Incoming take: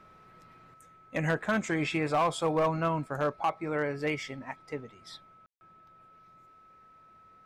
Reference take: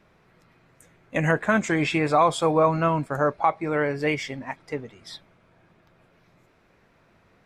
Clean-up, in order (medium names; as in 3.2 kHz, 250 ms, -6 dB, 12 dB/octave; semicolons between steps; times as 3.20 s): clip repair -20.5 dBFS; band-stop 1.3 kHz, Q 30; room tone fill 5.46–5.61 s; trim 0 dB, from 0.74 s +6.5 dB